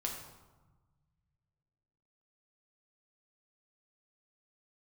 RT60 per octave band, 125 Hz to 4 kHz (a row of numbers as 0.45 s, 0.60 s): 2.8 s, 1.9 s, 1.1 s, 1.3 s, 0.85 s, 0.70 s